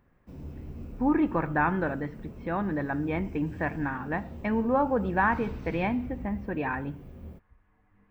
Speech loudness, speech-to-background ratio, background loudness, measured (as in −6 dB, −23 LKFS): −29.0 LKFS, 14.5 dB, −43.5 LKFS